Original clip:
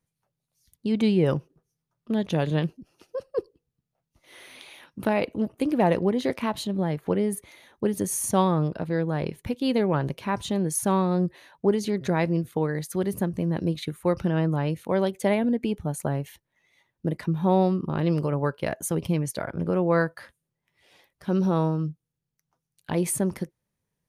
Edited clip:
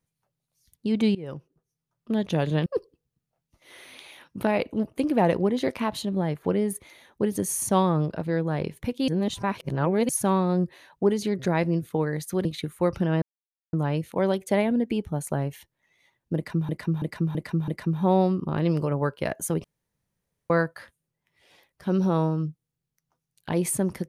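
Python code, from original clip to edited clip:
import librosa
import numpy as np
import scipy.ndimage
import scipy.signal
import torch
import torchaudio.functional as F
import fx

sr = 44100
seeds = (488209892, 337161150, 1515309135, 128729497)

y = fx.edit(x, sr, fx.fade_in_from(start_s=1.15, length_s=0.96, floor_db=-21.0),
    fx.cut(start_s=2.66, length_s=0.62),
    fx.reverse_span(start_s=9.7, length_s=1.01),
    fx.cut(start_s=13.07, length_s=0.62),
    fx.insert_silence(at_s=14.46, length_s=0.51),
    fx.repeat(start_s=17.09, length_s=0.33, count=5),
    fx.room_tone_fill(start_s=19.05, length_s=0.86), tone=tone)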